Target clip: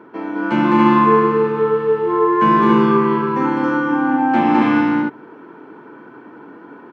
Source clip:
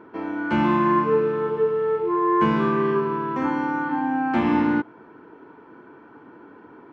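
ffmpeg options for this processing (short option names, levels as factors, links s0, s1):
-filter_complex "[0:a]highpass=f=120:w=0.5412,highpass=f=120:w=1.3066,asplit=2[s0][s1];[s1]aecho=0:1:209.9|277:0.794|0.794[s2];[s0][s2]amix=inputs=2:normalize=0,volume=1.5"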